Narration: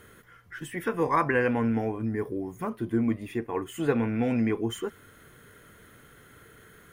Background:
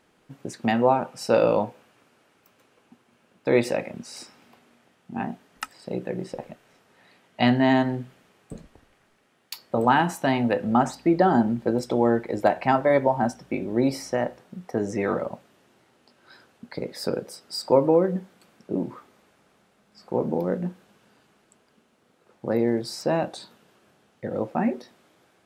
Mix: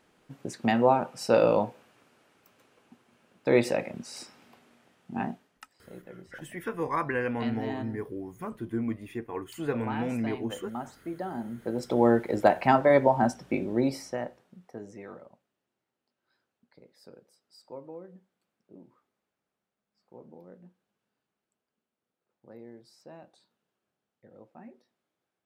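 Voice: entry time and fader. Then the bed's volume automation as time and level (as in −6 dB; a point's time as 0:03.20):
5.80 s, −5.0 dB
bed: 0:05.28 −2 dB
0:05.63 −16.5 dB
0:11.35 −16.5 dB
0:12.04 −0.5 dB
0:13.55 −0.5 dB
0:15.52 −24.5 dB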